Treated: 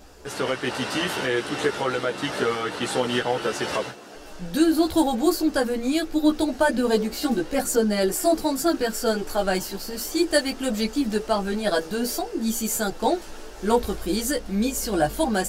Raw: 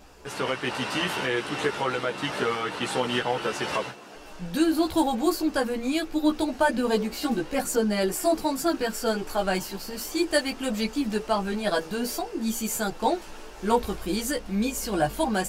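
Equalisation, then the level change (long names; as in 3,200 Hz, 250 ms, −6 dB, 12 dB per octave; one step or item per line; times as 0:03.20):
graphic EQ with 15 bands 160 Hz −4 dB, 1,000 Hz −5 dB, 2,500 Hz −5 dB
+4.0 dB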